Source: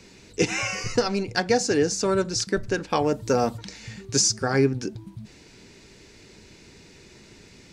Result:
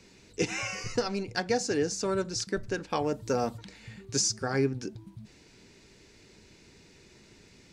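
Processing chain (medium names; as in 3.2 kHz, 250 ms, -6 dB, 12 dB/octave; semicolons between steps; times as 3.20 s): 3.64–4.07 s: peaking EQ 5.8 kHz -10.5 dB 0.63 oct; trim -6.5 dB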